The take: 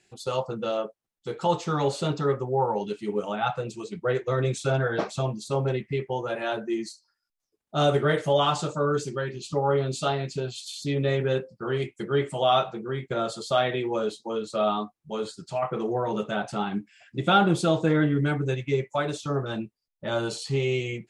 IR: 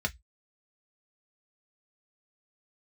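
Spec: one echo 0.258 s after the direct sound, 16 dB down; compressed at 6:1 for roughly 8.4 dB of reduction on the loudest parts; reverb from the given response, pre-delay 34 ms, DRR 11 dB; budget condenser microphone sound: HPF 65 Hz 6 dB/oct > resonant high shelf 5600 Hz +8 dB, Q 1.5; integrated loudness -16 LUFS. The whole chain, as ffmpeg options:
-filter_complex "[0:a]acompressor=threshold=-25dB:ratio=6,aecho=1:1:258:0.158,asplit=2[a][b];[1:a]atrim=start_sample=2205,adelay=34[c];[b][c]afir=irnorm=-1:irlink=0,volume=-17dB[d];[a][d]amix=inputs=2:normalize=0,highpass=f=65:p=1,highshelf=f=5.6k:t=q:w=1.5:g=8,volume=15dB"

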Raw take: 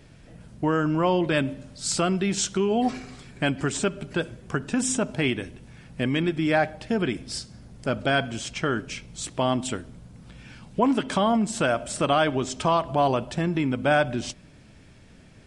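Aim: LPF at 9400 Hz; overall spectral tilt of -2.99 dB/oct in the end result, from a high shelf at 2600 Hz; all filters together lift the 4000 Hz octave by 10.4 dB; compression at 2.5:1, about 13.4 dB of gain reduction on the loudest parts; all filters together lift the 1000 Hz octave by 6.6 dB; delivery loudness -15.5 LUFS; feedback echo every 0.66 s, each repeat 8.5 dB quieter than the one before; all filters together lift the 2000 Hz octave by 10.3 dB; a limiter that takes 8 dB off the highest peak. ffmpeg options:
-af "lowpass=9.4k,equalizer=f=1k:t=o:g=5.5,equalizer=f=2k:t=o:g=8,highshelf=f=2.6k:g=6.5,equalizer=f=4k:t=o:g=5,acompressor=threshold=-31dB:ratio=2.5,alimiter=limit=-20dB:level=0:latency=1,aecho=1:1:660|1320|1980|2640:0.376|0.143|0.0543|0.0206,volume=16.5dB"

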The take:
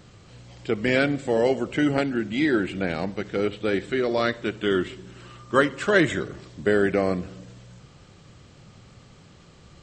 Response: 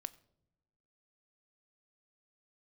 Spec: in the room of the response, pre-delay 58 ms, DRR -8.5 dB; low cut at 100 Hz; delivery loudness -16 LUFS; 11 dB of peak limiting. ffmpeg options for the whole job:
-filter_complex "[0:a]highpass=100,alimiter=limit=-15.5dB:level=0:latency=1,asplit=2[a][b];[1:a]atrim=start_sample=2205,adelay=58[c];[b][c]afir=irnorm=-1:irlink=0,volume=12dB[d];[a][d]amix=inputs=2:normalize=0,volume=2dB"

